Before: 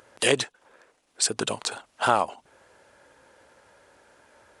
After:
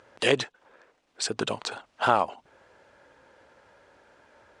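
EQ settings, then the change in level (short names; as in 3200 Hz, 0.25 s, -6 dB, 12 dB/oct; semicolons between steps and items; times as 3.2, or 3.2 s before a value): air absorption 95 m; 0.0 dB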